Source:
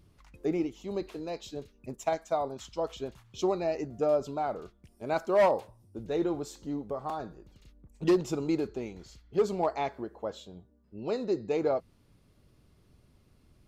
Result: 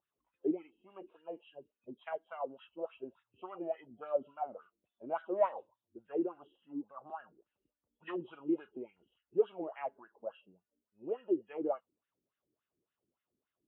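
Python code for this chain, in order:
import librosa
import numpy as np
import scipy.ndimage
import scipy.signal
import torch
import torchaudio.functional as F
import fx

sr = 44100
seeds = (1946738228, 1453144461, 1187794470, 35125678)

y = fx.freq_compress(x, sr, knee_hz=2500.0, ratio=4.0)
y = fx.noise_reduce_blind(y, sr, reduce_db=10)
y = fx.wah_lfo(y, sr, hz=3.5, low_hz=290.0, high_hz=1800.0, q=4.4)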